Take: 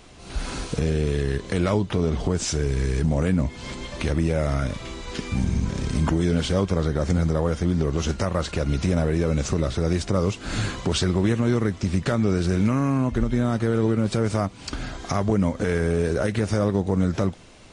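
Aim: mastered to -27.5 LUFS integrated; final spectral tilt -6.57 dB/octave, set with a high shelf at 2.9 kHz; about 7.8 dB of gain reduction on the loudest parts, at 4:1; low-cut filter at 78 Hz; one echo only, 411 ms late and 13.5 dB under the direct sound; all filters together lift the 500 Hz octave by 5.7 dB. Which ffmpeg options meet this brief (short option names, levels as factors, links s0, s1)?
-af "highpass=78,equalizer=f=500:t=o:g=7,highshelf=f=2900:g=-3.5,acompressor=threshold=0.0631:ratio=4,aecho=1:1:411:0.211,volume=1.12"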